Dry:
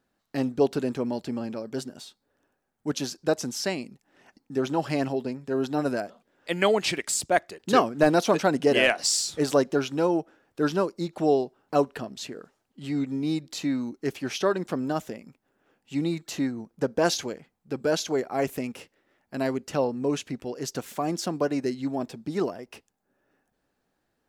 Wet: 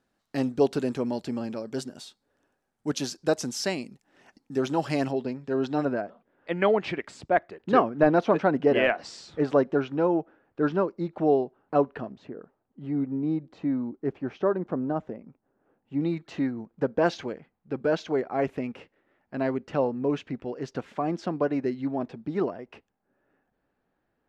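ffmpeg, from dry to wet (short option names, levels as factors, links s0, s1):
-af "asetnsamples=n=441:p=0,asendcmd='5.11 lowpass f 4500;5.85 lowpass f 1900;12.12 lowpass f 1100;16.01 lowpass f 2400',lowpass=11000"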